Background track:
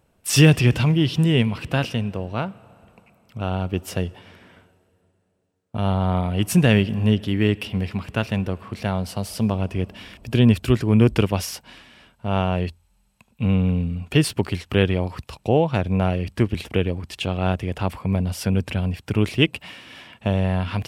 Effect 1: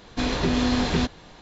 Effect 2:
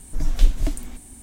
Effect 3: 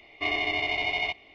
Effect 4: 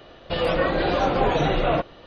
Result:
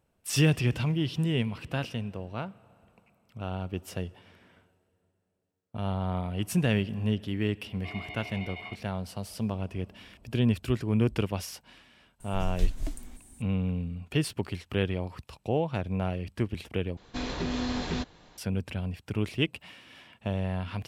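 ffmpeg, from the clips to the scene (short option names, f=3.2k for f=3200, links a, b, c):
-filter_complex "[0:a]volume=-9.5dB[a];[3:a]lowpass=3.6k[b];[a]asplit=2[c][d];[c]atrim=end=16.974[e];[1:a]atrim=end=1.41,asetpts=PTS-STARTPTS,volume=-8.5dB[f];[d]atrim=start=18.376[g];[b]atrim=end=1.34,asetpts=PTS-STARTPTS,volume=-13.5dB,afade=t=in:d=0.004:c=hsin,afade=t=out:st=1.336:d=0.004:c=hsin,adelay=7630[h];[2:a]atrim=end=1.22,asetpts=PTS-STARTPTS,volume=-10dB,afade=t=in:d=0.004:c=hsin,afade=t=out:st=1.216:d=0.004:c=hsin,adelay=538020S[i];[e][f]acrossfade=d=0.004:c1=hsin:c2=hsin[j];[j][g]acrossfade=d=0.004:c1=hsin:c2=hsin[k];[k][h][i]amix=inputs=3:normalize=0"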